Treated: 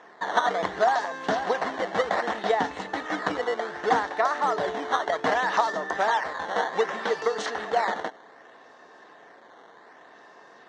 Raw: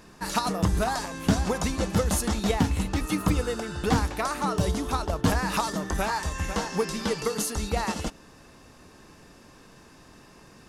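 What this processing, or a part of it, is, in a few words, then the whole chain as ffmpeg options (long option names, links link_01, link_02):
circuit-bent sampling toy: -af "acrusher=samples=10:mix=1:aa=0.000001:lfo=1:lforange=16:lforate=0.65,highpass=450,equalizer=frequency=450:width_type=q:width=4:gain=4,equalizer=frequency=710:width_type=q:width=4:gain=8,equalizer=frequency=1000:width_type=q:width=4:gain=3,equalizer=frequency=1800:width_type=q:width=4:gain=8,equalizer=frequency=2500:width_type=q:width=4:gain=-10,equalizer=frequency=4900:width_type=q:width=4:gain=-8,lowpass=frequency=5400:width=0.5412,lowpass=frequency=5400:width=1.3066,volume=1.5dB"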